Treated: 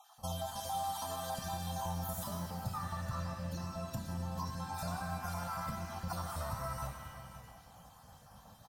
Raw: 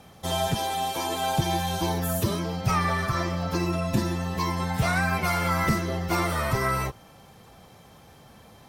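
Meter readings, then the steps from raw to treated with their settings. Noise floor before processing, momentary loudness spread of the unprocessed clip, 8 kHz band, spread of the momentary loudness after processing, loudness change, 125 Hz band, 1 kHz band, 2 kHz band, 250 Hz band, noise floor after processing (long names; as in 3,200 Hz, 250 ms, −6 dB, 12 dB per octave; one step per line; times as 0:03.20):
−52 dBFS, 4 LU, −10.5 dB, 17 LU, −13.5 dB, −12.5 dB, −12.0 dB, −19.5 dB, −15.0 dB, −59 dBFS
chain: time-frequency cells dropped at random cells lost 28%
downward compressor, threshold −32 dBFS, peak gain reduction 13 dB
phaser with its sweep stopped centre 900 Hz, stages 4
on a send: single-tap delay 535 ms −14.5 dB
on the sum: reverb with rising layers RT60 1.6 s, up +7 semitones, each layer −8 dB, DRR 4.5 dB
level −3.5 dB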